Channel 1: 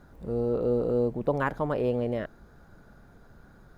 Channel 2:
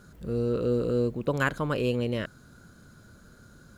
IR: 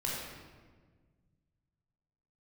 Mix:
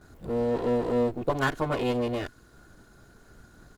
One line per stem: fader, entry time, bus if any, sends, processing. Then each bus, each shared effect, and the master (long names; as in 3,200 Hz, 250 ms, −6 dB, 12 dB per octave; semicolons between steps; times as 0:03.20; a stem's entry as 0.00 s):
−0.5 dB, 0.00 s, no send, transient designer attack +2 dB, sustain −10 dB; amplitude modulation by smooth noise, depth 55%
−1.5 dB, 12 ms, no send, lower of the sound and its delayed copy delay 2.8 ms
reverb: not used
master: no processing